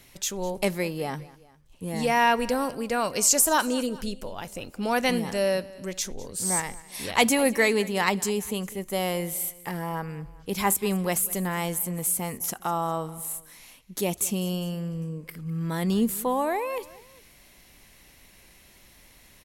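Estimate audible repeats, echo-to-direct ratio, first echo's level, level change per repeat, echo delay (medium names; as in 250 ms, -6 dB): 2, -19.0 dB, -20.0 dB, -5.0 dB, 203 ms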